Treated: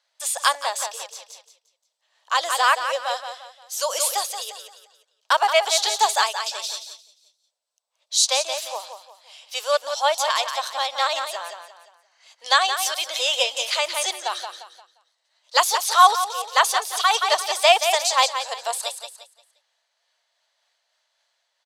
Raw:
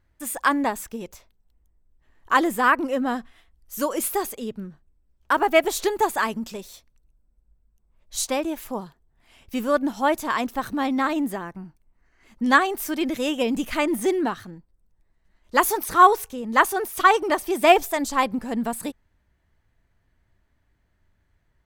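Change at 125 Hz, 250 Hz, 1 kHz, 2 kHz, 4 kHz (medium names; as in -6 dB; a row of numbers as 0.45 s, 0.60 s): under -40 dB, under -30 dB, +1.0 dB, 0.0 dB, +12.5 dB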